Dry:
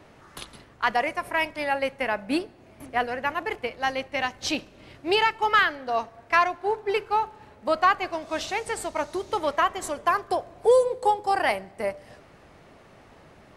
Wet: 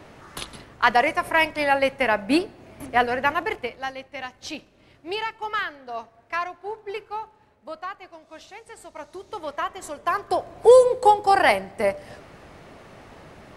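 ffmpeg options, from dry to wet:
-af "volume=25.5dB,afade=t=out:st=3.27:d=0.66:silence=0.237137,afade=t=out:st=6.95:d=0.94:silence=0.446684,afade=t=in:st=8.67:d=1.33:silence=0.298538,afade=t=in:st=10:d=0.7:silence=0.334965"

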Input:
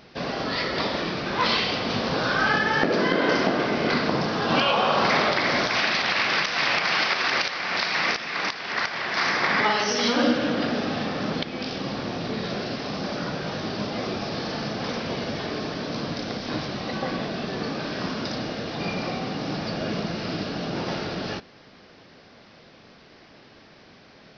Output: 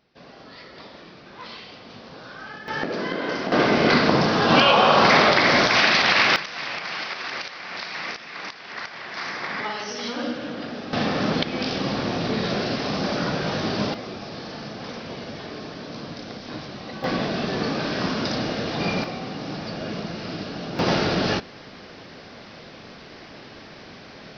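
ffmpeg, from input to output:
-af "asetnsamples=n=441:p=0,asendcmd='2.68 volume volume -5.5dB;3.52 volume volume 5.5dB;6.36 volume volume -7.5dB;10.93 volume volume 4.5dB;13.94 volume volume -5.5dB;17.04 volume volume 4dB;19.04 volume volume -2.5dB;20.79 volume volume 8dB',volume=-16.5dB"

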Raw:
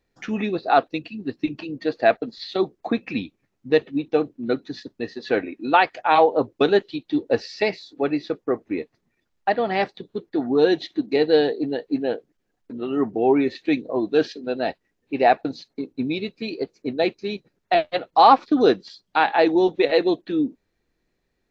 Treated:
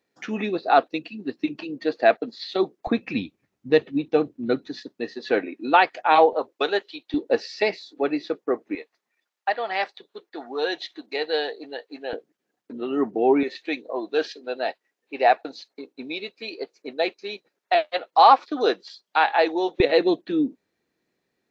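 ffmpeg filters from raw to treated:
-af "asetnsamples=n=441:p=0,asendcmd='2.87 highpass f 71;4.67 highpass f 220;6.33 highpass f 590;7.14 highpass f 270;8.75 highpass f 730;12.13 highpass f 230;13.43 highpass f 510;19.8 highpass f 160',highpass=220"

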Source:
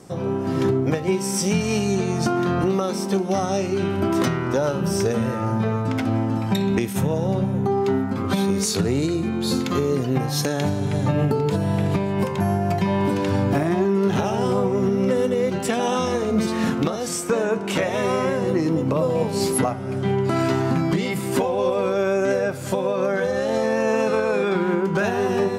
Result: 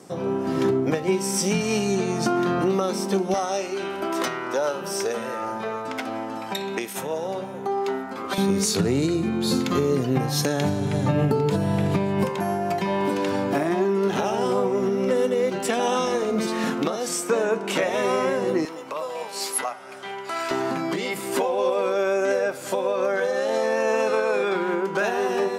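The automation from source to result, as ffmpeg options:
-af "asetnsamples=n=441:p=0,asendcmd='3.34 highpass f 470;8.38 highpass f 110;12.29 highpass f 260;18.65 highpass f 890;20.51 highpass f 360',highpass=190"

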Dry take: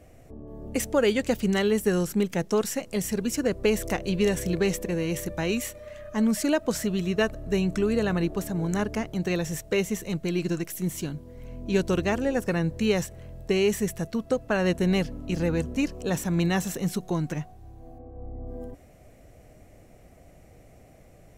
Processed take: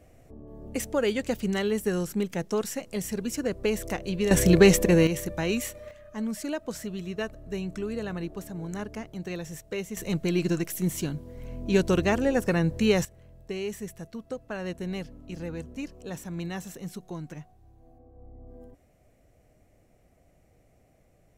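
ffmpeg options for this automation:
-af "asetnsamples=n=441:p=0,asendcmd='4.31 volume volume 8.5dB;5.07 volume volume -0.5dB;5.91 volume volume -8dB;9.97 volume volume 1.5dB;13.05 volume volume -10dB',volume=-3.5dB"

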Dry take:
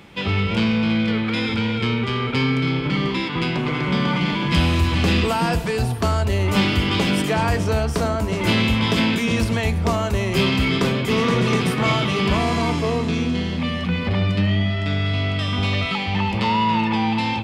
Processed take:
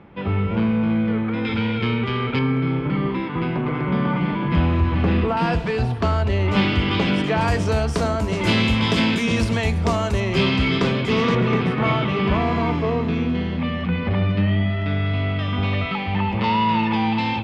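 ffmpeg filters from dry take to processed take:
-af "asetnsamples=n=441:p=0,asendcmd='1.45 lowpass f 3100;2.39 lowpass f 1600;5.37 lowpass f 3500;7.41 lowpass f 8600;10.2 lowpass f 4900;11.35 lowpass f 2400;16.44 lowpass f 4100',lowpass=1.4k"

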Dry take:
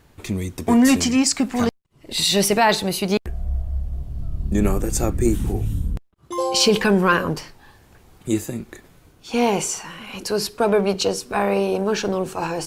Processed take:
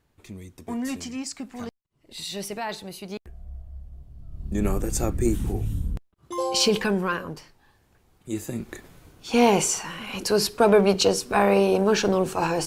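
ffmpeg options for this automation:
-af "volume=8.5dB,afade=t=in:st=4.26:d=0.48:silence=0.281838,afade=t=out:st=6.62:d=0.6:silence=0.421697,afade=t=in:st=8.29:d=0.43:silence=0.237137"

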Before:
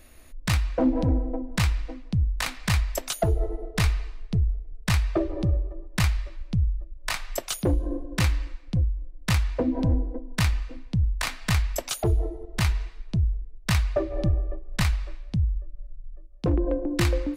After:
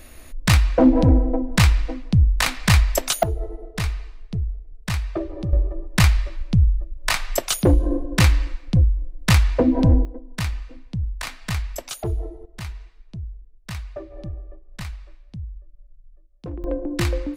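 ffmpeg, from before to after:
-af "asetnsamples=n=441:p=0,asendcmd='3.23 volume volume -2dB;5.53 volume volume 7.5dB;10.05 volume volume -2.5dB;12.46 volume volume -9.5dB;16.64 volume volume 0.5dB',volume=8dB"

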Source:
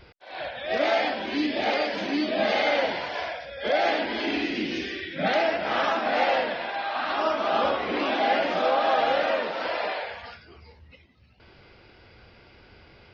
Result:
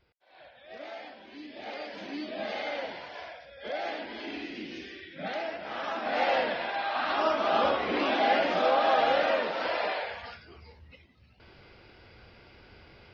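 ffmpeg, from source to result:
-af "volume=-1.5dB,afade=t=in:st=1.45:d=0.6:silence=0.398107,afade=t=in:st=5.81:d=0.66:silence=0.334965"

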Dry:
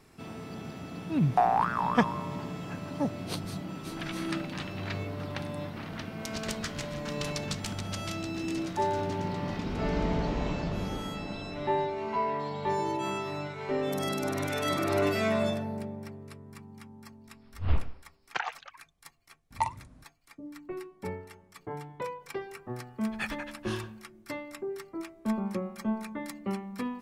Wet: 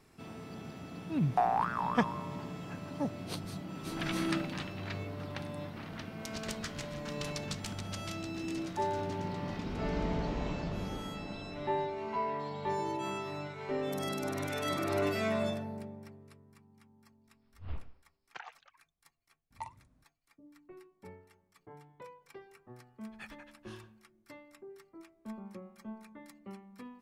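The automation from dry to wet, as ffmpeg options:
-af "volume=2dB,afade=t=in:st=3.69:d=0.44:silence=0.473151,afade=t=out:st=4.13:d=0.63:silence=0.473151,afade=t=out:st=15.48:d=1.12:silence=0.334965"

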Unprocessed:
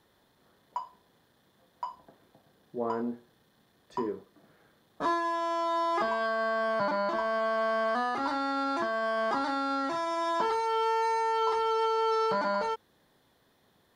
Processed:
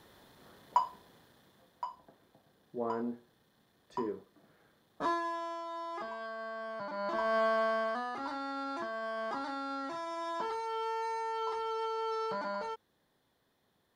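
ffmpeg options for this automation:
-af "volume=20dB,afade=t=out:st=0.79:d=1.09:silence=0.281838,afade=t=out:st=5.06:d=0.58:silence=0.375837,afade=t=in:st=6.9:d=0.5:silence=0.237137,afade=t=out:st=7.4:d=0.61:silence=0.375837"

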